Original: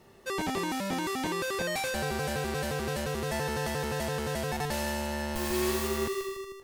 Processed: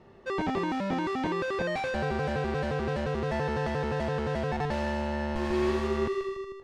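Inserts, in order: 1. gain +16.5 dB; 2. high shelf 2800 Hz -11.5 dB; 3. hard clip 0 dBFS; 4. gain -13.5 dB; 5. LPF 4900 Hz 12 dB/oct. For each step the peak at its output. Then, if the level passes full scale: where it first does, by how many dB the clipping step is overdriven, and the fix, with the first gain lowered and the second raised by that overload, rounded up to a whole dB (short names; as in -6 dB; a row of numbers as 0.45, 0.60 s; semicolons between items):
-2.0, -3.5, -3.5, -17.0, -17.5 dBFS; no overload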